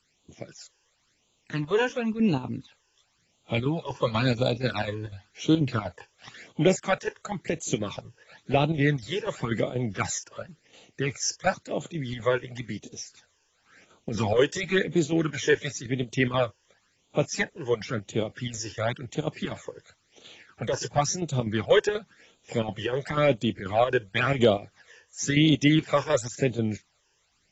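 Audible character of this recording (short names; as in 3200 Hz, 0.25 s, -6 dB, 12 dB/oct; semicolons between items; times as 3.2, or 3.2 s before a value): chopped level 4.1 Hz, depth 60%, duty 75%; a quantiser's noise floor 12-bit, dither triangular; phasing stages 12, 0.95 Hz, lowest notch 210–1800 Hz; AAC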